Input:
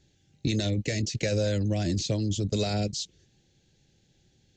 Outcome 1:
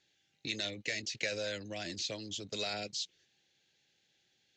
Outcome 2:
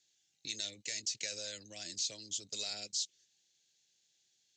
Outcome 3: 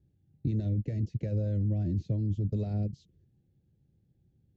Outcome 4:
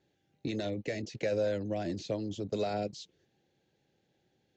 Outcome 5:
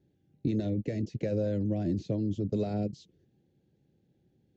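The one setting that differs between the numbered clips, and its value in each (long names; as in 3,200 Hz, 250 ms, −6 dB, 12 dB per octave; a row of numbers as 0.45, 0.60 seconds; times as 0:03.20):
resonant band-pass, frequency: 2,300, 7,800, 100, 760, 270 Hertz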